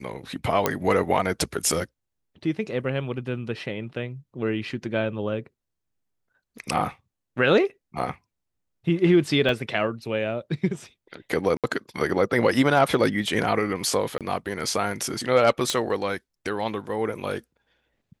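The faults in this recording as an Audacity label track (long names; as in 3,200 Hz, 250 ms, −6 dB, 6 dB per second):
0.660000	0.660000	click −6 dBFS
9.490000	9.490000	drop-out 2.2 ms
11.570000	11.640000	drop-out 67 ms
14.180000	14.210000	drop-out 27 ms
15.700000	15.700000	click −9 dBFS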